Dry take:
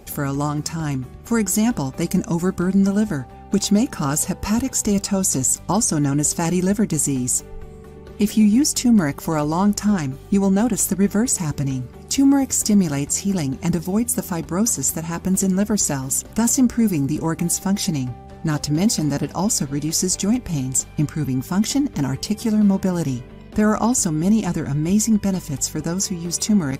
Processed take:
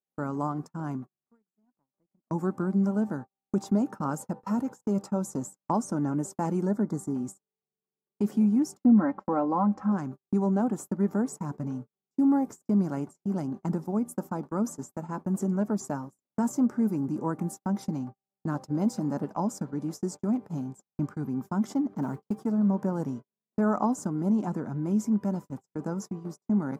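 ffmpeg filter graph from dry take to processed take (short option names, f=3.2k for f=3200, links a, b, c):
-filter_complex "[0:a]asettb=1/sr,asplit=3[a][b][c];[a]atrim=end=1.144[d];[b]atrim=start=1.14:end=2.31,asetpts=PTS-STARTPTS,afade=t=in:d=0.004:c=qsin,afade=t=out:st=1.166:d=0.004:c=qsin,lowpass=6.9k,acompressor=threshold=-29dB:ratio=16:attack=3.2:release=140:knee=1:detection=peak[e];[c]atrim=start=2.306[f];[d][e]acrossfade=d=0.004:c1=hsin:c2=qsin[g];[g][f]acrossfade=d=0.004:c1=qsin:c2=hsin,asettb=1/sr,asplit=3[h][i][j];[h]atrim=end=6.674[k];[i]atrim=start=6.67:end=7.15,asetpts=PTS-STARTPTS,afade=t=in:d=0.004:c=qsin,afade=t=out:st=0.476:d=0.004:c=qsin,asuperstop=centerf=2700:order=8:qfactor=2,highshelf=f=7k:g=-4[l];[j]atrim=start=7.146[m];[k][l]acrossfade=d=0.004:c1=hsin:c2=qsin[n];[n][m]acrossfade=d=0.004:c1=qsin:c2=hsin,asettb=1/sr,asplit=3[o][p][q];[o]atrim=end=8.774[r];[p]atrim=start=8.77:end=9.92,asetpts=PTS-STARTPTS,afade=t=in:d=0.004:c=qsin,afade=t=out:st=1.146:d=0.004:c=qsin,lowpass=2.6k,asubboost=boost=10.5:cutoff=74,aecho=1:1:3.8:0.84,atrim=end_sample=50715[s];[q]atrim=start=9.916[t];[r][s]acrossfade=d=0.004:c1=hsin:c2=qsin[u];[u][t]acrossfade=d=0.004:c1=qsin:c2=hsin,asettb=1/sr,asplit=3[v][w][x];[v]atrim=end=22.024[y];[w]atrim=start=22.02:end=22.45,asetpts=PTS-STARTPTS,afade=t=in:d=0.004:c=qsin,afade=t=out:st=0.426:d=0.004:c=qsin,acrossover=split=4100[z][aa];[aa]acompressor=threshold=-34dB:ratio=4:attack=1:release=60[ab];[z][ab]amix=inputs=2:normalize=0,acrusher=bits=5:mode=log:mix=0:aa=0.000001[ac];[x]atrim=start=22.446[ad];[y][ac]acrossfade=d=0.004:c1=hsin:c2=qsin[ae];[ae][ad]acrossfade=d=0.004:c1=qsin:c2=hsin,highpass=f=150:w=0.5412,highpass=f=150:w=1.3066,highshelf=f=1.7k:t=q:w=1.5:g=-14,agate=range=-48dB:threshold=-28dB:ratio=16:detection=peak,volume=-8dB"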